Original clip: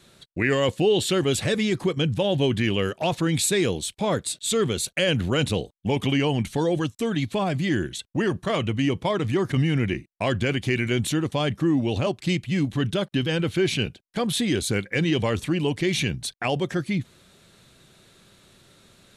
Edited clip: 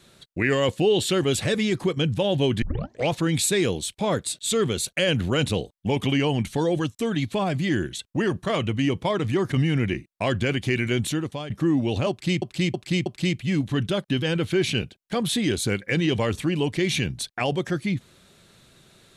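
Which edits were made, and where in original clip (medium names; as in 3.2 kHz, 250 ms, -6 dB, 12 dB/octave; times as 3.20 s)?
2.62 s: tape start 0.50 s
10.86–11.50 s: fade out equal-power, to -14 dB
12.10–12.42 s: loop, 4 plays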